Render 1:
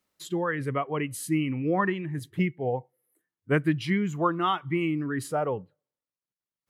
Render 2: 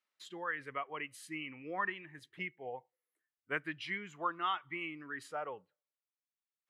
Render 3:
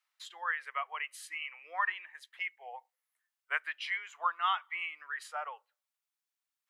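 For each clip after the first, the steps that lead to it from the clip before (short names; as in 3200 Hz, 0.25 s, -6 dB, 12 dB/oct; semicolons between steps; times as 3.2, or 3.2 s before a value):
band-pass 2100 Hz, Q 0.76; gain -5 dB
inverse Chebyshev high-pass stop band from 220 Hz, stop band 60 dB; gain +4.5 dB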